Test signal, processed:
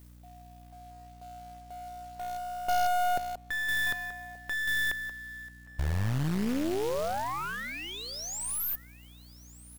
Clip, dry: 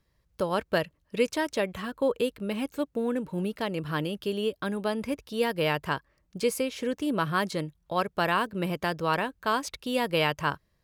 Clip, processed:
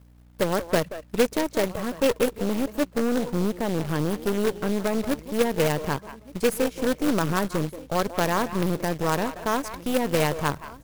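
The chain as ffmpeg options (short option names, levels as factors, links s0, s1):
-filter_complex "[0:a]equalizer=f=3400:w=0.51:g=-14,areverse,acompressor=mode=upward:threshold=0.00794:ratio=2.5,areverse,asplit=2[s0][s1];[s1]adelay=180,highpass=300,lowpass=3400,asoftclip=type=hard:threshold=0.0668,volume=0.316[s2];[s0][s2]amix=inputs=2:normalize=0,aeval=exprs='val(0)+0.00158*(sin(2*PI*60*n/s)+sin(2*PI*2*60*n/s)/2+sin(2*PI*3*60*n/s)/3+sin(2*PI*4*60*n/s)/4+sin(2*PI*5*60*n/s)/5)':c=same,acrusher=bits=3:mode=log:mix=0:aa=0.000001,asplit=2[s3][s4];[s4]aecho=0:1:1179:0.1[s5];[s3][s5]amix=inputs=2:normalize=0,aeval=exprs='0.168*(cos(1*acos(clip(val(0)/0.168,-1,1)))-cos(1*PI/2))+0.0237*(cos(6*acos(clip(val(0)/0.168,-1,1)))-cos(6*PI/2))+0.0335*(cos(8*acos(clip(val(0)/0.168,-1,1)))-cos(8*PI/2))':c=same,volume=1.78"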